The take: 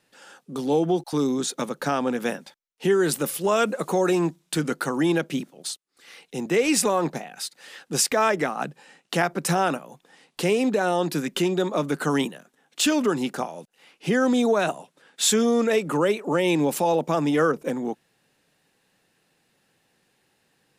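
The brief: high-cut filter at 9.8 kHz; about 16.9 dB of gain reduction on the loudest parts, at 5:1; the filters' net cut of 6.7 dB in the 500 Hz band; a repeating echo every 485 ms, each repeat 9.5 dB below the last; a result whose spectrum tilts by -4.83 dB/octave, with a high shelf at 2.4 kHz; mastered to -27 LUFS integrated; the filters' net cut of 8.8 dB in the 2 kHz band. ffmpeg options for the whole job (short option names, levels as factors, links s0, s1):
-af "lowpass=9800,equalizer=f=500:t=o:g=-8,equalizer=f=2000:t=o:g=-7.5,highshelf=f=2400:g=-8.5,acompressor=threshold=0.00891:ratio=5,aecho=1:1:485|970|1455|1940:0.335|0.111|0.0365|0.012,volume=6.68"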